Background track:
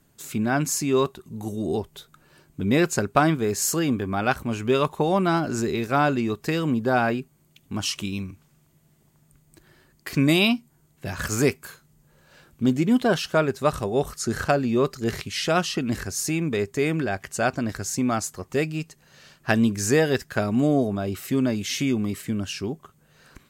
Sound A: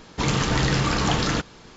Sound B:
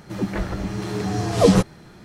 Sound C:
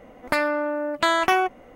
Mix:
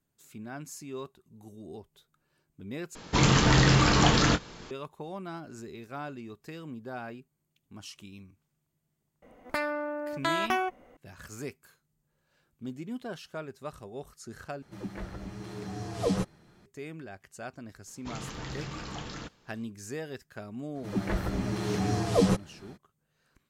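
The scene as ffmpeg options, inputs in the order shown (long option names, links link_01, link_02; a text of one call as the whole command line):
ffmpeg -i bed.wav -i cue0.wav -i cue1.wav -i cue2.wav -filter_complex "[1:a]asplit=2[link_01][link_02];[2:a]asplit=2[link_03][link_04];[0:a]volume=-18dB[link_05];[link_01]asplit=2[link_06][link_07];[link_07]adelay=23,volume=-10.5dB[link_08];[link_06][link_08]amix=inputs=2:normalize=0[link_09];[link_04]dynaudnorm=framelen=140:gausssize=3:maxgain=6dB[link_10];[link_05]asplit=3[link_11][link_12][link_13];[link_11]atrim=end=2.954[link_14];[link_09]atrim=end=1.76[link_15];[link_12]atrim=start=4.706:end=14.624[link_16];[link_03]atrim=end=2.04,asetpts=PTS-STARTPTS,volume=-13.5dB[link_17];[link_13]atrim=start=16.656[link_18];[3:a]atrim=end=1.75,asetpts=PTS-STARTPTS,volume=-8.5dB,afade=type=in:duration=0.004:curve=hsin,afade=type=out:start_time=1.746:duration=0.004:curve=hsin,adelay=406602S[link_19];[link_02]atrim=end=1.76,asetpts=PTS-STARTPTS,volume=-17.5dB,afade=type=in:duration=0.004:curve=hsin,afade=type=out:start_time=1.756:duration=0.004:curve=hsin,adelay=17870[link_20];[link_10]atrim=end=2.04,asetpts=PTS-STARTPTS,volume=-10dB,afade=type=in:duration=0.02,afade=type=out:start_time=2.02:duration=0.02,adelay=20740[link_21];[link_14][link_15]acrossfade=duration=0.004:curve1=hsin:curve2=hsin[link_22];[link_22][link_16]acrossfade=duration=0.004:curve1=hsin:curve2=hsin[link_23];[link_23][link_17]acrossfade=duration=0.004:curve1=hsin:curve2=hsin[link_24];[link_24][link_18]acrossfade=duration=0.004:curve1=hsin:curve2=hsin[link_25];[link_25][link_19][link_20][link_21]amix=inputs=4:normalize=0" out.wav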